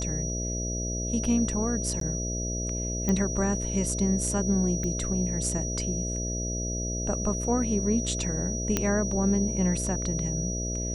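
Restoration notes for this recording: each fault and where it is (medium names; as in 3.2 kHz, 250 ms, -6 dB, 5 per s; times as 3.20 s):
buzz 60 Hz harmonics 11 -32 dBFS
whine 5.8 kHz -33 dBFS
2.00–2.01 s: dropout 13 ms
3.09 s: pop -14 dBFS
4.84 s: pop -21 dBFS
8.77 s: pop -9 dBFS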